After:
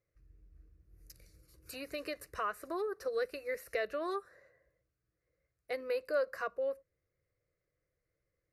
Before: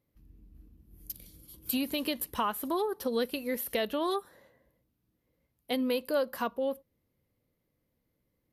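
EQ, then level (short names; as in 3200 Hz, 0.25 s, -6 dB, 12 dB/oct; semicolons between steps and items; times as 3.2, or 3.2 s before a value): air absorption 100 m; tilt shelf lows -4 dB, about 1100 Hz; fixed phaser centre 890 Hz, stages 6; 0.0 dB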